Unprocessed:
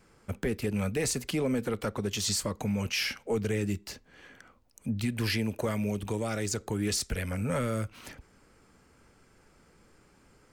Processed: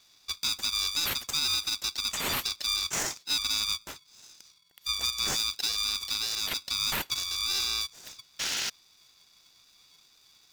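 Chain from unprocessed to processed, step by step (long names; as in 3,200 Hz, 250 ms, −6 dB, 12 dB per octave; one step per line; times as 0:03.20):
neighbouring bands swapped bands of 4,000 Hz
sound drawn into the spectrogram noise, 0:08.39–0:08.70, 1,900–6,600 Hz −31 dBFS
ring modulator with a square carrier 590 Hz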